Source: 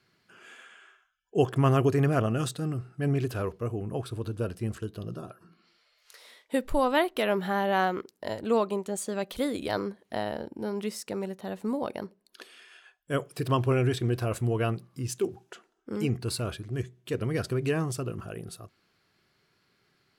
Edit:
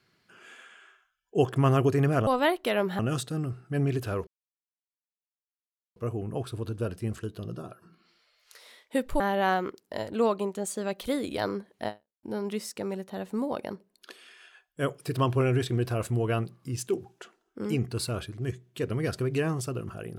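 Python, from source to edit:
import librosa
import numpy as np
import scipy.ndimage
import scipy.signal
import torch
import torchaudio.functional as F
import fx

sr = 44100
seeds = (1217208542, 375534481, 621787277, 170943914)

y = fx.edit(x, sr, fx.insert_silence(at_s=3.55, length_s=1.69),
    fx.move(start_s=6.79, length_s=0.72, to_s=2.27),
    fx.fade_out_span(start_s=10.19, length_s=0.35, curve='exp'), tone=tone)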